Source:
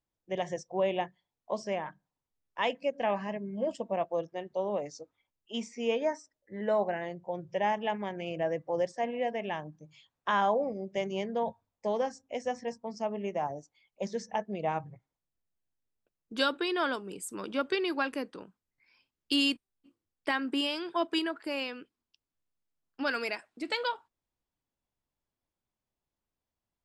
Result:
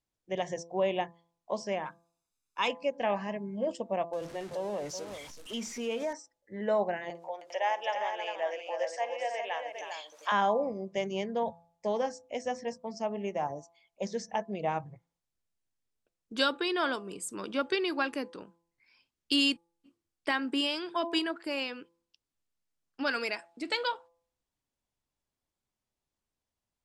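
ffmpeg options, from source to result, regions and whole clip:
-filter_complex "[0:a]asettb=1/sr,asplit=3[a][b][c];[a]atrim=end=1.854[d];[b]atrim=start=1.85:end=2.68,asetpts=PTS-STARTPTS,afade=t=in:d=0.004:c=qsin,afade=t=out:st=0.826:d=0.004:c=qsin,bass=f=250:g=-8,treble=f=4k:g=7,asoftclip=type=hard:threshold=-18.5dB,aecho=1:1:0.8:0.64,atrim=end_sample=36603[e];[c]atrim=start=2.676[f];[d][e]acrossfade=d=0.004:c1=hsin:c2=qsin[g];[g][f]acrossfade=d=0.004:c1=qsin:c2=hsin,asettb=1/sr,asplit=3[h][i][j];[h]atrim=end=4.134[k];[i]atrim=start=4.13:end=6.13,asetpts=PTS-STARTPTS,afade=t=in:d=0.004:c=qsin,afade=t=out:st=1.996:d=0.004:c=qsin,aeval=exprs='val(0)+0.5*0.00794*sgn(val(0))':c=same,aecho=1:1:378:0.224,atrim=end_sample=88200,acompressor=threshold=-33dB:ratio=2:attack=3.2:release=140:knee=1:detection=peak[l];[j]atrim=start=6.126[m];[k][l]acrossfade=d=0.004:c1=hsin:c2=qsin[n];[n][m]acrossfade=d=0.004:c1=qsin:c2=hsin,asettb=1/sr,asplit=3[o][p][q];[o]atrim=end=7.104[r];[p]atrim=start=7.1:end=10.32,asetpts=PTS-STARTPTS,afade=t=in:d=0.004:c=qsin,afade=t=out:st=3.216:d=0.004:c=qsin,highpass=f=560:w=0.5412,highpass=f=560:w=1.3066,acompressor=mode=upward:threshold=-35dB:ratio=2.5:attack=3.2:release=140:knee=2.83:detection=peak,aecho=1:1:52|314|402:0.133|0.398|0.473,atrim=end_sample=142002[s];[q]atrim=start=10.316[t];[r][s]acrossfade=d=0.004:c1=hsin:c2=qsin[u];[u][t]acrossfade=d=0.004:c1=qsin:c2=hsin,lowpass=8.8k,highshelf=f=5.8k:g=6.5,bandreject=f=169:t=h:w=4,bandreject=f=338:t=h:w=4,bandreject=f=507:t=h:w=4,bandreject=f=676:t=h:w=4,bandreject=f=845:t=h:w=4,bandreject=f=1.014k:t=h:w=4,bandreject=f=1.183k:t=h:w=4"

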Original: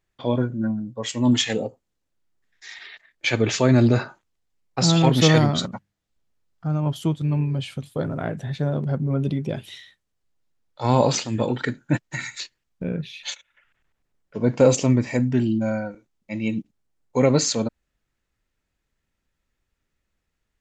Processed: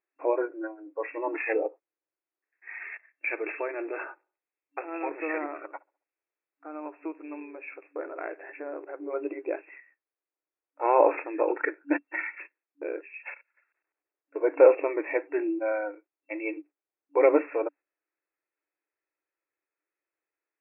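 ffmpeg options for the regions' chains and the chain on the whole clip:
-filter_complex "[0:a]asettb=1/sr,asplit=3[a][b][c];[a]atrim=end=2.744[d];[b]atrim=start=2.74:end=8.98,asetpts=PTS-STARTPTS,afade=t=in:d=0.004:c=qsin,afade=t=out:st=6.236:d=0.004:c=qsin,highshelf=f=2.3k:g=11,acompressor=threshold=-33dB:ratio=2:attack=3.2:release=140:knee=1:detection=peak,asplit=2[e][f];[f]adelay=67,lowpass=f=1.2k:p=1,volume=-20.5dB,asplit=2[g][h];[h]adelay=67,lowpass=f=1.2k:p=1,volume=0.54,asplit=2[i][j];[j]adelay=67,lowpass=f=1.2k:p=1,volume=0.54,asplit=2[k][l];[l]adelay=67,lowpass=f=1.2k:p=1,volume=0.54[m];[e][g][i][k][m]amix=inputs=5:normalize=0,atrim=end_sample=275184[n];[c]atrim=start=8.976[o];[d][n]acrossfade=d=0.004:c1=hsin:c2=qsin[p];[p][o]acrossfade=d=0.004:c1=qsin:c2=hsin,agate=range=-8dB:threshold=-41dB:ratio=16:detection=peak,afftfilt=real='re*between(b*sr/4096,290,2700)':imag='im*between(b*sr/4096,290,2700)':win_size=4096:overlap=0.75"

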